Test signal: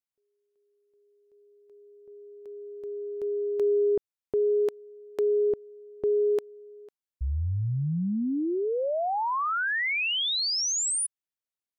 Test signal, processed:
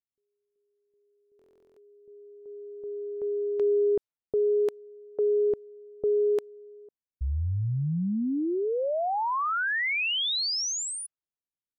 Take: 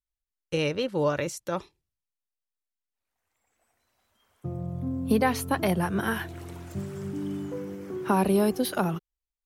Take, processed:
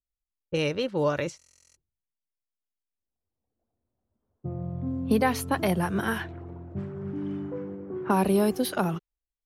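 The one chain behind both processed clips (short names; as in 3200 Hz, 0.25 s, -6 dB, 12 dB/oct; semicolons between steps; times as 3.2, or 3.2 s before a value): low-pass opened by the level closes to 350 Hz, open at -23 dBFS; stuck buffer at 1.37, samples 1024, times 16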